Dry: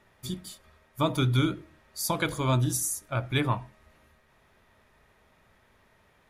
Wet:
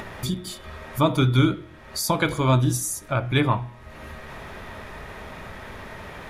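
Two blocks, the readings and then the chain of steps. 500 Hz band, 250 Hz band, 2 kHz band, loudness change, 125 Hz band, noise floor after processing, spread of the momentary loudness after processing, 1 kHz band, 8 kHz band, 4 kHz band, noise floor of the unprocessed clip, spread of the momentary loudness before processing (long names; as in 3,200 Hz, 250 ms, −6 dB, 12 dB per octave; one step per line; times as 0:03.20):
+6.5 dB, +6.5 dB, +6.0 dB, +5.5 dB, +6.0 dB, −45 dBFS, 19 LU, +6.5 dB, +2.5 dB, +4.5 dB, −64 dBFS, 14 LU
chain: high-shelf EQ 5,100 Hz −8 dB
hum removal 119.9 Hz, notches 34
upward compression, threshold −28 dBFS
level +6.5 dB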